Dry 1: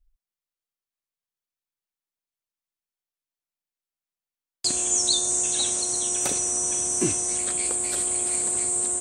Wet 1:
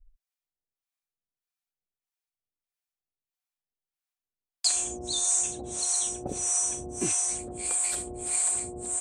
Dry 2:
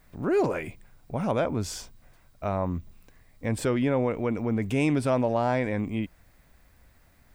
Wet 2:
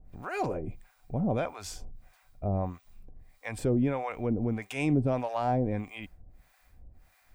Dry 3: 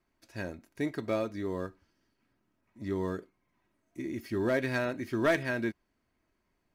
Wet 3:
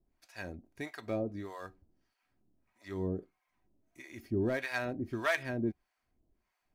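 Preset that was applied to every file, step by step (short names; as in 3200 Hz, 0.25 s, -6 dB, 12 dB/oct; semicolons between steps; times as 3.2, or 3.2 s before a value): low shelf 75 Hz +10.5 dB; small resonant body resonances 750/2400 Hz, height 10 dB, ringing for 95 ms; harmonic tremolo 1.6 Hz, depth 100%, crossover 660 Hz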